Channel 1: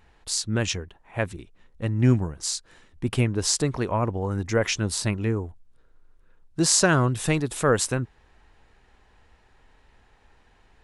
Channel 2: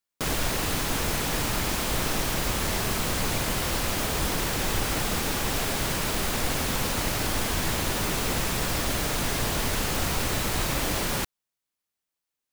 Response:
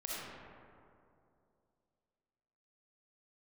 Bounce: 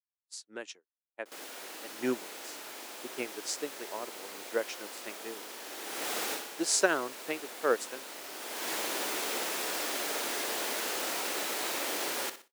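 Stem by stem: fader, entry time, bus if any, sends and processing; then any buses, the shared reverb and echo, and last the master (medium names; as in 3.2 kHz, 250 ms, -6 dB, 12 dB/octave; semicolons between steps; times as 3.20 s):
-1.5 dB, 0.00 s, no send, no echo send, upward expansion 2.5:1, over -36 dBFS
-5.0 dB, 1.05 s, no send, echo send -11 dB, auto duck -24 dB, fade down 0.25 s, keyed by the first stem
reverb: none
echo: feedback delay 61 ms, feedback 37%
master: expander -45 dBFS; high-pass 320 Hz 24 dB/octave; peaking EQ 1.1 kHz -3 dB 0.24 oct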